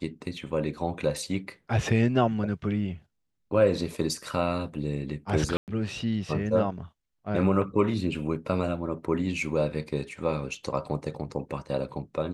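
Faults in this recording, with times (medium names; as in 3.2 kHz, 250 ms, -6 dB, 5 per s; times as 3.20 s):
5.57–5.68 s: dropout 108 ms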